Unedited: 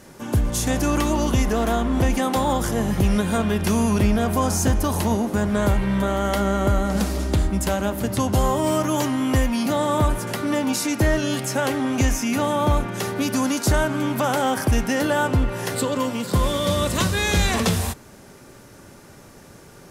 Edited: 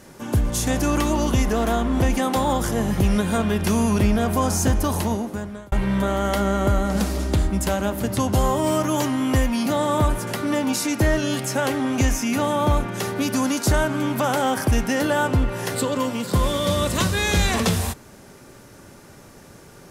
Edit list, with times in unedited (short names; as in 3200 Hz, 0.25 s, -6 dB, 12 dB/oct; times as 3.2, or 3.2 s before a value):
4.92–5.72 fade out